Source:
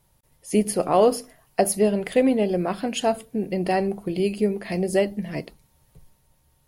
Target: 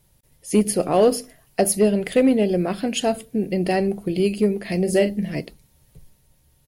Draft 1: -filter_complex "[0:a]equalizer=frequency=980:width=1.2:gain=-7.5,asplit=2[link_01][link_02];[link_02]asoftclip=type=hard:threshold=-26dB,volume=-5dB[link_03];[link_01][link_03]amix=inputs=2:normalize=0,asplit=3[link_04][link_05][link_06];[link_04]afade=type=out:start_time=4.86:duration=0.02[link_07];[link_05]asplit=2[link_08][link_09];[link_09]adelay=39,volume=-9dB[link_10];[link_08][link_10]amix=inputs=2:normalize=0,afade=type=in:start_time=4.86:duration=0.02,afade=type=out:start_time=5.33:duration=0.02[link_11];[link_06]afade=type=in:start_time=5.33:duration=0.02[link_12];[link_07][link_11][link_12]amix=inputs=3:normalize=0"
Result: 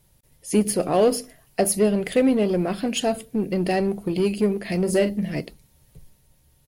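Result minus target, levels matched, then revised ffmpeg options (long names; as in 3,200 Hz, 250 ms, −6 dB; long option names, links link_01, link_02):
hard clipping: distortion +13 dB
-filter_complex "[0:a]equalizer=frequency=980:width=1.2:gain=-7.5,asplit=2[link_01][link_02];[link_02]asoftclip=type=hard:threshold=-15.5dB,volume=-5dB[link_03];[link_01][link_03]amix=inputs=2:normalize=0,asplit=3[link_04][link_05][link_06];[link_04]afade=type=out:start_time=4.86:duration=0.02[link_07];[link_05]asplit=2[link_08][link_09];[link_09]adelay=39,volume=-9dB[link_10];[link_08][link_10]amix=inputs=2:normalize=0,afade=type=in:start_time=4.86:duration=0.02,afade=type=out:start_time=5.33:duration=0.02[link_11];[link_06]afade=type=in:start_time=5.33:duration=0.02[link_12];[link_07][link_11][link_12]amix=inputs=3:normalize=0"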